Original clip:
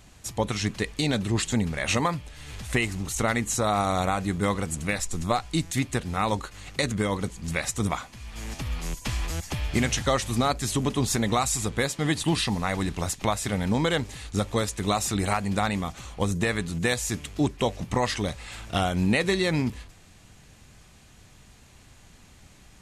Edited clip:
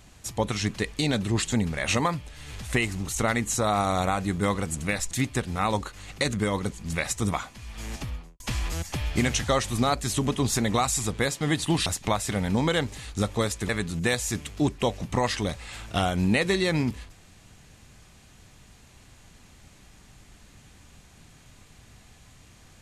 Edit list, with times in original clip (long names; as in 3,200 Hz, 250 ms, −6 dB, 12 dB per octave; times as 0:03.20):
0:05.11–0:05.69: remove
0:08.53–0:08.98: fade out and dull
0:12.44–0:13.03: remove
0:14.86–0:16.48: remove